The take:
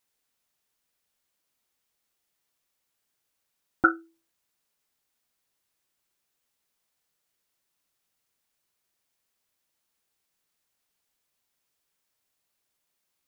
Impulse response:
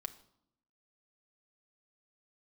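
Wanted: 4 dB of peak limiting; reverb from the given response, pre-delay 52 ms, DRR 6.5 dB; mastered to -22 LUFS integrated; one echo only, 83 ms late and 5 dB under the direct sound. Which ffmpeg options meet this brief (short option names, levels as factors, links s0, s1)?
-filter_complex "[0:a]alimiter=limit=0.335:level=0:latency=1,aecho=1:1:83:0.562,asplit=2[s0][s1];[1:a]atrim=start_sample=2205,adelay=52[s2];[s1][s2]afir=irnorm=-1:irlink=0,volume=0.631[s3];[s0][s3]amix=inputs=2:normalize=0,volume=2"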